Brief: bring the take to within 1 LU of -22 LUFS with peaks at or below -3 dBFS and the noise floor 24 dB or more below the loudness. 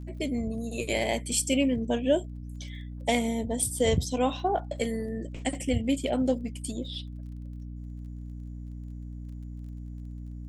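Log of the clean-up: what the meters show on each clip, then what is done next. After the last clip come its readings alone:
tick rate 20 per s; hum 60 Hz; highest harmonic 300 Hz; hum level -36 dBFS; loudness -28.5 LUFS; peak level -10.0 dBFS; loudness target -22.0 LUFS
-> de-click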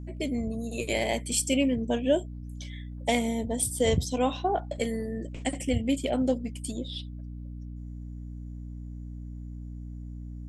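tick rate 0 per s; hum 60 Hz; highest harmonic 300 Hz; hum level -36 dBFS
-> de-hum 60 Hz, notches 5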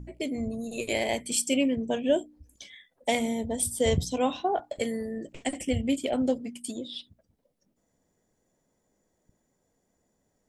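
hum not found; loudness -29.0 LUFS; peak level -10.5 dBFS; loudness target -22.0 LUFS
-> trim +7 dB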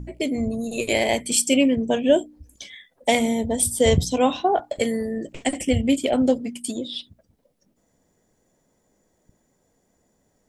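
loudness -22.0 LUFS; peak level -3.5 dBFS; noise floor -68 dBFS

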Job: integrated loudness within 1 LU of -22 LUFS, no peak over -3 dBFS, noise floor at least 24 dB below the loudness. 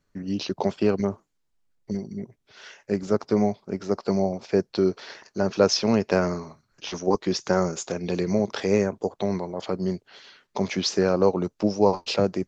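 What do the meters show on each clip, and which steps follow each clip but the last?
loudness -25.0 LUFS; peak level -5.0 dBFS; loudness target -22.0 LUFS
-> trim +3 dB; peak limiter -3 dBFS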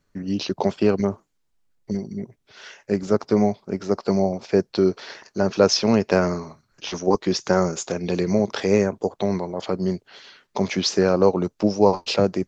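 loudness -22.0 LUFS; peak level -3.0 dBFS; noise floor -70 dBFS

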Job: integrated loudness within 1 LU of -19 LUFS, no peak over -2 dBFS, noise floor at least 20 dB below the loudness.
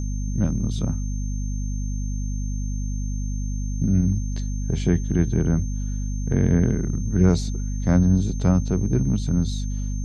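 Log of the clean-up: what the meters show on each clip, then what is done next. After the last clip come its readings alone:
hum 50 Hz; highest harmonic 250 Hz; hum level -24 dBFS; steady tone 6.3 kHz; tone level -42 dBFS; loudness -24.0 LUFS; peak level -5.5 dBFS; loudness target -19.0 LUFS
-> hum notches 50/100/150/200/250 Hz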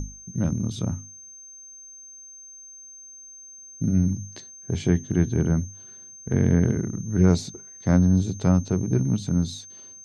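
hum not found; steady tone 6.3 kHz; tone level -42 dBFS
-> band-stop 6.3 kHz, Q 30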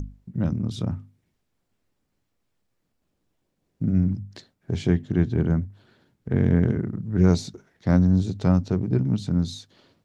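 steady tone not found; loudness -24.0 LUFS; peak level -6.0 dBFS; loudness target -19.0 LUFS
-> trim +5 dB; peak limiter -2 dBFS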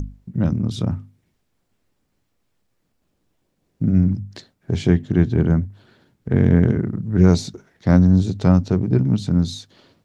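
loudness -19.0 LUFS; peak level -2.0 dBFS; noise floor -71 dBFS

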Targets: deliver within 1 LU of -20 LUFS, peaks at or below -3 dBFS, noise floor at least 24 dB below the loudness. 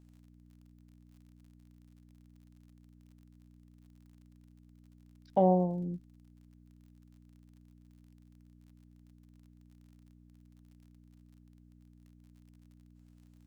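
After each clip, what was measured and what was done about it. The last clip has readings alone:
tick rate 39 per s; hum 60 Hz; highest harmonic 300 Hz; hum level -57 dBFS; loudness -30.0 LUFS; peak level -15.0 dBFS; loudness target -20.0 LUFS
-> de-click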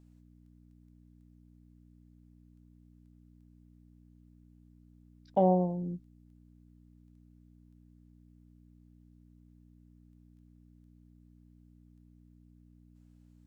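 tick rate 0 per s; hum 60 Hz; highest harmonic 300 Hz; hum level -57 dBFS
-> de-hum 60 Hz, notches 5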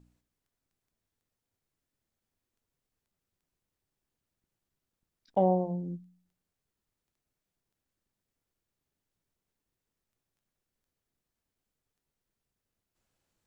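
hum not found; loudness -29.5 LUFS; peak level -14.5 dBFS; loudness target -20.0 LUFS
-> trim +9.5 dB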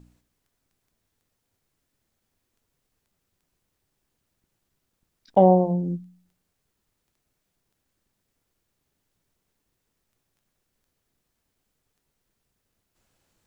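loudness -20.5 LUFS; peak level -5.0 dBFS; noise floor -78 dBFS

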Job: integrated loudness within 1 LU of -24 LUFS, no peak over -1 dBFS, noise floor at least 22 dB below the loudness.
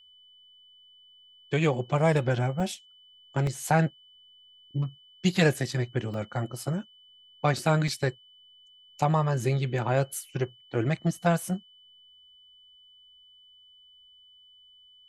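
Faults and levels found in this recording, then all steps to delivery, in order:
dropouts 5; longest dropout 2.1 ms; steady tone 3 kHz; tone level -54 dBFS; loudness -28.0 LUFS; peak level -9.5 dBFS; loudness target -24.0 LUFS
-> interpolate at 2.60/3.47/6.14/7.88/10.14 s, 2.1 ms; band-stop 3 kHz, Q 30; trim +4 dB

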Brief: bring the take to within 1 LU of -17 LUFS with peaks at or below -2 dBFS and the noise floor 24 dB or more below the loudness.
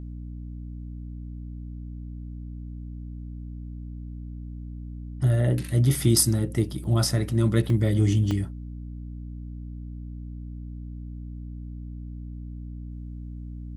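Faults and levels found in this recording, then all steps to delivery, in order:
dropouts 4; longest dropout 1.8 ms; hum 60 Hz; highest harmonic 300 Hz; hum level -35 dBFS; loudness -23.5 LUFS; peak level -7.0 dBFS; loudness target -17.0 LUFS
-> interpolate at 5.95/6.84/7.70/8.31 s, 1.8 ms; de-hum 60 Hz, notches 5; trim +6.5 dB; peak limiter -2 dBFS

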